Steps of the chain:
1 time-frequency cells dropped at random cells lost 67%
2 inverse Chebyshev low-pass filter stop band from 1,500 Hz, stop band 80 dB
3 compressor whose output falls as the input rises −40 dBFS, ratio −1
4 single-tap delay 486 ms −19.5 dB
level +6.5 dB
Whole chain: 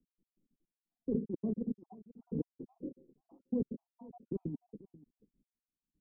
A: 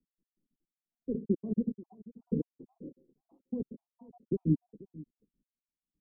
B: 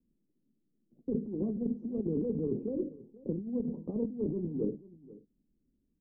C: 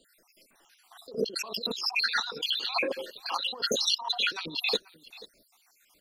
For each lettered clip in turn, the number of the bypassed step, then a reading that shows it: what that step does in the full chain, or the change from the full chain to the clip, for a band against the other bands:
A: 3, change in momentary loudness spread +2 LU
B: 1, change in crest factor −5.0 dB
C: 2, 1 kHz band +32.5 dB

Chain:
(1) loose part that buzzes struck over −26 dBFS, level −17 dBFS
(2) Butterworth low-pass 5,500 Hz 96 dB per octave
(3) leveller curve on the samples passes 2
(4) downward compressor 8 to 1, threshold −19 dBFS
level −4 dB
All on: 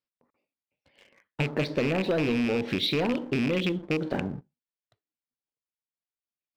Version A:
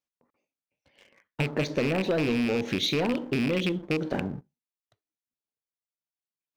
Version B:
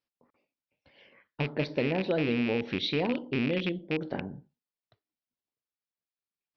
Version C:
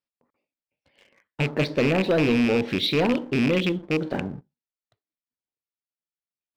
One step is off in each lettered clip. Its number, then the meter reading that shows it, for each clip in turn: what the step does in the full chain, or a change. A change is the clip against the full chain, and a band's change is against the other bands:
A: 2, 8 kHz band +5.5 dB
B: 3, change in crest factor +3.5 dB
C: 4, average gain reduction 3.0 dB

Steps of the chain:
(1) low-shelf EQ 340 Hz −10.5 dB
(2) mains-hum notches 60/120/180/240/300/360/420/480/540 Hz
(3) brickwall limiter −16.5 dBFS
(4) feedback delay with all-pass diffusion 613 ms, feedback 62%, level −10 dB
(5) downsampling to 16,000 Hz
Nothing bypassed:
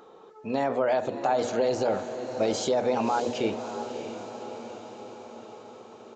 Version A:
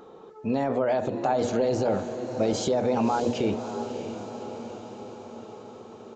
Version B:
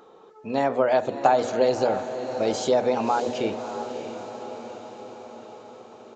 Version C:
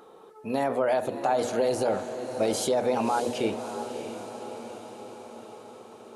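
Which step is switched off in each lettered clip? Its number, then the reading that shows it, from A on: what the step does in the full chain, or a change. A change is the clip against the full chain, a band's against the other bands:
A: 1, 125 Hz band +7.5 dB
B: 3, change in crest factor +5.0 dB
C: 5, 8 kHz band +3.0 dB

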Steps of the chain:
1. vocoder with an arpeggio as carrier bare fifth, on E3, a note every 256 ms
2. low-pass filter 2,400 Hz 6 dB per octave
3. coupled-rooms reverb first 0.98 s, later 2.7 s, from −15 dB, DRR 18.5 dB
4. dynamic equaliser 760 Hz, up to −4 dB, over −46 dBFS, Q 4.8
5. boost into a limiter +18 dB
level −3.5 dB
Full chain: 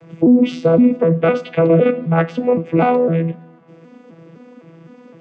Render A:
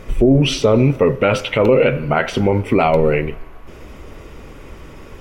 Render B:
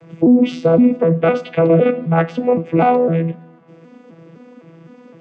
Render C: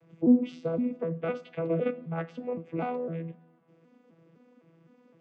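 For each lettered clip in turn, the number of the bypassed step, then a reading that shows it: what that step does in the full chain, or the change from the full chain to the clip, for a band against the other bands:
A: 1, 250 Hz band −4.5 dB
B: 4, 1 kHz band +2.5 dB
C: 5, change in crest factor +7.5 dB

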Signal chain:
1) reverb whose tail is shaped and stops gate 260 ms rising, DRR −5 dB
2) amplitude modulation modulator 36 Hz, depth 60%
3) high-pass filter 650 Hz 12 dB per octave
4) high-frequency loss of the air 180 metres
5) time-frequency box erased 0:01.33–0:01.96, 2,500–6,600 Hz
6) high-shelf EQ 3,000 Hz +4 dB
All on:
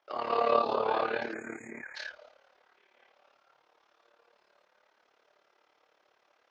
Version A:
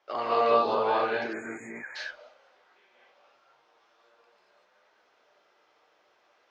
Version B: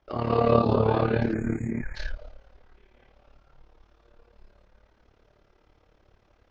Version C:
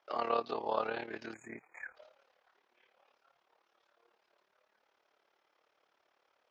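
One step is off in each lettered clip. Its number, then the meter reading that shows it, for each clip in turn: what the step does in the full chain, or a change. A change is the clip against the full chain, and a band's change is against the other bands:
2, change in crest factor −2.5 dB
3, 125 Hz band +27.5 dB
1, 125 Hz band +2.5 dB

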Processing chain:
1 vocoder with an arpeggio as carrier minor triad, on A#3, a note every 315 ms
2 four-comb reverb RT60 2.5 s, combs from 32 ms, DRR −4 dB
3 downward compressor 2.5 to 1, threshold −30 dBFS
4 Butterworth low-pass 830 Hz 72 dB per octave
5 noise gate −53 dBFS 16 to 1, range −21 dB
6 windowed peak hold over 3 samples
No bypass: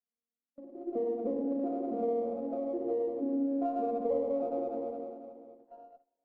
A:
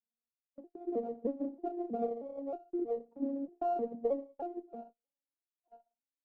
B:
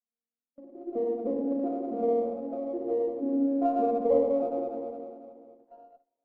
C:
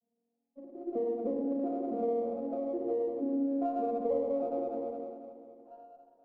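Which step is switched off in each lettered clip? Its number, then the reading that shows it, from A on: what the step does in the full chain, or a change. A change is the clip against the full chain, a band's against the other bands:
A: 2, change in momentary loudness spread +2 LU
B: 3, change in crest factor +4.0 dB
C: 5, change in momentary loudness spread +7 LU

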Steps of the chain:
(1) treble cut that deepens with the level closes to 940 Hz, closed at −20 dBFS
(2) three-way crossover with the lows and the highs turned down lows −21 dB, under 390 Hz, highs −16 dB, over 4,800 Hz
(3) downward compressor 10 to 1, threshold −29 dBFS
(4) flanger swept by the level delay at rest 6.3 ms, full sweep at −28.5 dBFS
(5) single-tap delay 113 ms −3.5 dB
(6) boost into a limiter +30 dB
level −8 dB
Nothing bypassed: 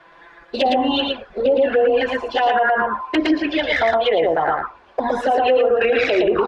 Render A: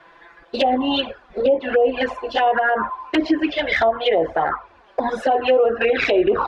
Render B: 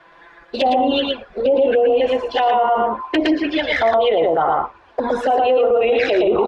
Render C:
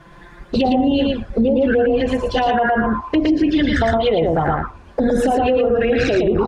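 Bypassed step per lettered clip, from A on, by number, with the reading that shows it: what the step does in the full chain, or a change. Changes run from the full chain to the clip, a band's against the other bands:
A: 5, change in momentary loudness spread +1 LU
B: 3, average gain reduction 2.5 dB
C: 2, 125 Hz band +17.5 dB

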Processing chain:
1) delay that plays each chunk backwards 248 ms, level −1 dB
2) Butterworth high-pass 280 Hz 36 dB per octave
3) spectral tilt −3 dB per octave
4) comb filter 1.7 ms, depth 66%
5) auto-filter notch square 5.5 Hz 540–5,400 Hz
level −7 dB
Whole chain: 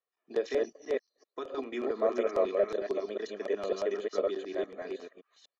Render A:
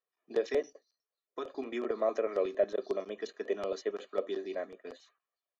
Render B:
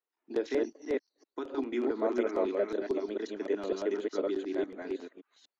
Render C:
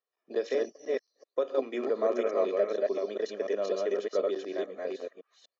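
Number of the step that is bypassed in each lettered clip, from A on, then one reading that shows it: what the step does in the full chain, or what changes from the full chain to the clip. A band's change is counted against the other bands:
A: 1, change in integrated loudness −2.0 LU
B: 4, 250 Hz band +7.0 dB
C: 5, change in momentary loudness spread −4 LU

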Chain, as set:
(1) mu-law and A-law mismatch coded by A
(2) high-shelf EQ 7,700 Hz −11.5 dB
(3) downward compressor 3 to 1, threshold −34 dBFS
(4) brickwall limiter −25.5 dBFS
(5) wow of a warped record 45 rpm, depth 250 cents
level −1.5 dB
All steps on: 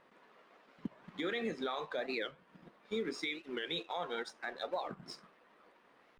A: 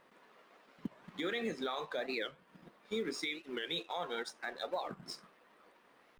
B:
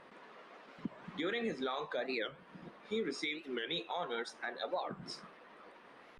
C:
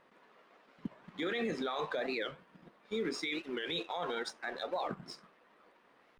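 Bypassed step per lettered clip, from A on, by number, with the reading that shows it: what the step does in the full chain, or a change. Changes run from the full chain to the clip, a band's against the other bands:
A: 2, 8 kHz band +5.0 dB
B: 1, distortion level −25 dB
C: 3, average gain reduction 8.0 dB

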